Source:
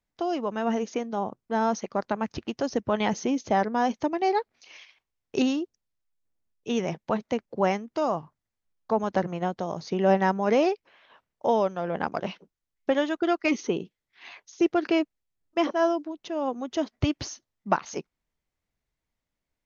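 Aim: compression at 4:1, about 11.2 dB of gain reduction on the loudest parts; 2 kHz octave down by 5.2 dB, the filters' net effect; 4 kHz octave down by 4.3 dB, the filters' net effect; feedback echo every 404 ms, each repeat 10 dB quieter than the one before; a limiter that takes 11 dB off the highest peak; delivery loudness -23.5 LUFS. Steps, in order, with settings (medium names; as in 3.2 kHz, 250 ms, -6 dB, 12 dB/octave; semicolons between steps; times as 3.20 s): peaking EQ 2 kHz -6 dB; peaking EQ 4 kHz -3.5 dB; compression 4:1, threshold -31 dBFS; peak limiter -29 dBFS; feedback delay 404 ms, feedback 32%, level -10 dB; trim +16 dB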